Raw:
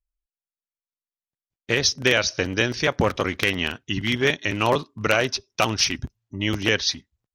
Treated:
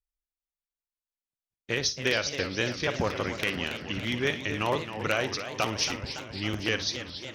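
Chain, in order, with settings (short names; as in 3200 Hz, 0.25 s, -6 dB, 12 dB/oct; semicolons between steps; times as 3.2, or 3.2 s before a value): flutter echo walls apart 9.9 m, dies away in 0.25 s; warbling echo 0.276 s, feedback 70%, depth 210 cents, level -10.5 dB; gain -7.5 dB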